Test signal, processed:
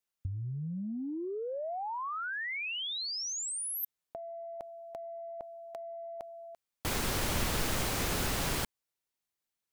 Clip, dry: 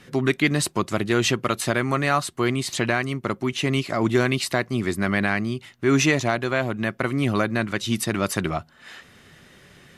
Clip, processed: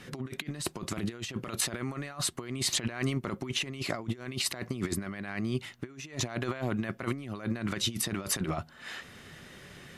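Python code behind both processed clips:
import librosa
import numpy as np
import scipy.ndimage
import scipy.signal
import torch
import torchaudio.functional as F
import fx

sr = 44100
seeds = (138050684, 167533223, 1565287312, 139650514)

y = fx.over_compress(x, sr, threshold_db=-28.0, ratio=-0.5)
y = F.gain(torch.from_numpy(y), -5.0).numpy()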